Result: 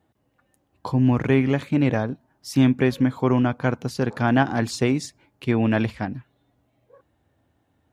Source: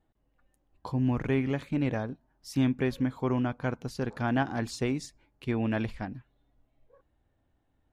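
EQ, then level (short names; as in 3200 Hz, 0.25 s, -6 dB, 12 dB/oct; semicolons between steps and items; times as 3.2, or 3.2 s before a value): HPF 77 Hz 24 dB/oct; +8.5 dB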